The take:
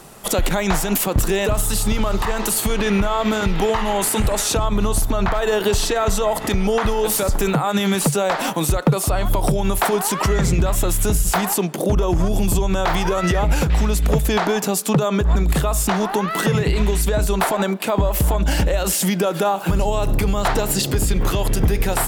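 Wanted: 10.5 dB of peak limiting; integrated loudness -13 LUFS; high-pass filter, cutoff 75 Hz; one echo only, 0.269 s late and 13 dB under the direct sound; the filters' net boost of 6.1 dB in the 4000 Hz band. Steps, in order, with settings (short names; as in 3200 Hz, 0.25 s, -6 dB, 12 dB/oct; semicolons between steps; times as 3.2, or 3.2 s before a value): HPF 75 Hz; bell 4000 Hz +7.5 dB; limiter -15.5 dBFS; echo 0.269 s -13 dB; gain +11 dB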